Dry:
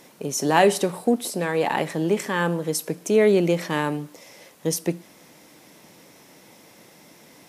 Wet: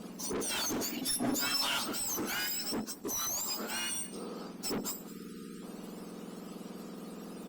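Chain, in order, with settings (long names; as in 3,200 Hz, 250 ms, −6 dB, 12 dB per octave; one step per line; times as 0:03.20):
frequency axis turned over on the octave scale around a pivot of 1,600 Hz
0:05.08–0:05.63: time-frequency box erased 490–1,200 Hz
in parallel at −2 dB: downward compressor, threshold −37 dBFS, peak gain reduction 20 dB
on the sum: soft clipping −21.5 dBFS, distortion −10 dB
0:02.74–0:03.89: power curve on the samples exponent 1.4
hard clipping −30 dBFS, distortion −9 dB
0:01.02–0:01.79: comb filter 7.2 ms, depth 97%
on a send: single-tap delay 210 ms −19 dB
on the sum: level −3 dB
Opus 48 kbit/s 48,000 Hz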